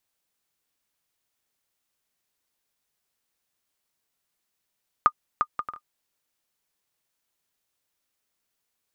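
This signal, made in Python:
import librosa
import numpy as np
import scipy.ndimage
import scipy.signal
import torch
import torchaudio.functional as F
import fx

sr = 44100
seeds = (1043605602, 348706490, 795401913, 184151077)

y = fx.bouncing_ball(sr, first_gap_s=0.35, ratio=0.52, hz=1220.0, decay_ms=61.0, level_db=-6.0)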